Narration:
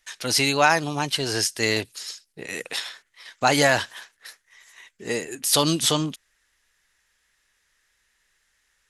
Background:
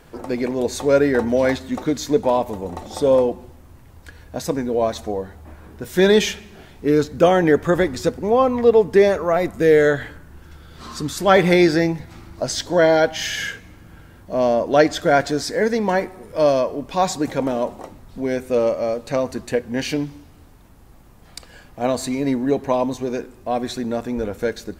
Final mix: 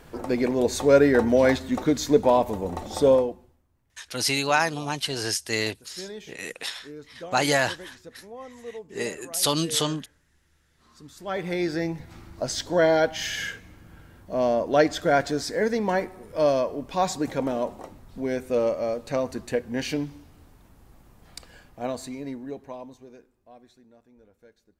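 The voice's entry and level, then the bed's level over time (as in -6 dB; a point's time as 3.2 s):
3.90 s, -3.5 dB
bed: 3.08 s -1 dB
3.68 s -25 dB
10.79 s -25 dB
12.11 s -5 dB
21.47 s -5 dB
23.93 s -32 dB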